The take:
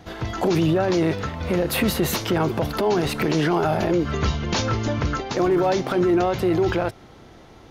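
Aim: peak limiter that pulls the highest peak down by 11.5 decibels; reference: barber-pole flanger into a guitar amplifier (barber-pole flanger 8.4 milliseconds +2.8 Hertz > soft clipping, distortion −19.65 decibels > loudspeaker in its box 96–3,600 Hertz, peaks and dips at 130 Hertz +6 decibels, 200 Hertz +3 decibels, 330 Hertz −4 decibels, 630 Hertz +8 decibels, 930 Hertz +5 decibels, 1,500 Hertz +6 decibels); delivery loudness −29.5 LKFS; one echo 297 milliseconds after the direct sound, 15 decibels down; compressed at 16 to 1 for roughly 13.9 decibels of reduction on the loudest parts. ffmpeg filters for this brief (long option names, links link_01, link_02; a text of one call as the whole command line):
ffmpeg -i in.wav -filter_complex "[0:a]acompressor=threshold=-30dB:ratio=16,alimiter=level_in=6.5dB:limit=-24dB:level=0:latency=1,volume=-6.5dB,aecho=1:1:297:0.178,asplit=2[link_01][link_02];[link_02]adelay=8.4,afreqshift=2.8[link_03];[link_01][link_03]amix=inputs=2:normalize=1,asoftclip=threshold=-34dB,highpass=96,equalizer=frequency=130:width_type=q:width=4:gain=6,equalizer=frequency=200:width_type=q:width=4:gain=3,equalizer=frequency=330:width_type=q:width=4:gain=-4,equalizer=frequency=630:width_type=q:width=4:gain=8,equalizer=frequency=930:width_type=q:width=4:gain=5,equalizer=frequency=1500:width_type=q:width=4:gain=6,lowpass=frequency=3600:width=0.5412,lowpass=frequency=3600:width=1.3066,volume=12dB" out.wav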